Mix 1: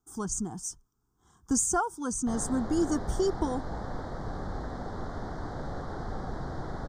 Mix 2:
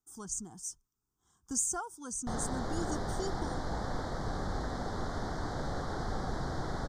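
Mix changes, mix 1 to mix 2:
speech −12.0 dB
master: add high-shelf EQ 2,600 Hz +9.5 dB

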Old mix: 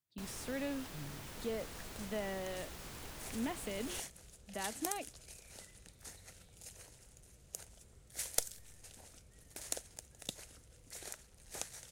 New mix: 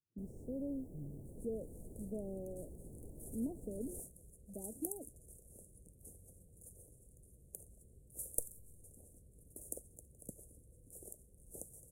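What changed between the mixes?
speech: add high-frequency loss of the air 140 metres
first sound: add low-pass filter 1,500 Hz 6 dB per octave
master: add inverse Chebyshev band-stop filter 1,300–4,100 Hz, stop band 60 dB

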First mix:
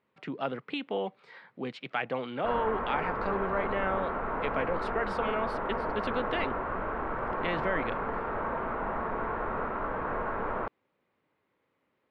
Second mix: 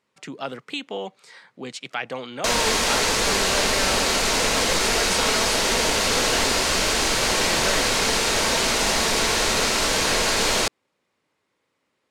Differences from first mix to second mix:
background: remove transistor ladder low-pass 1,500 Hz, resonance 45%
master: remove high-frequency loss of the air 390 metres

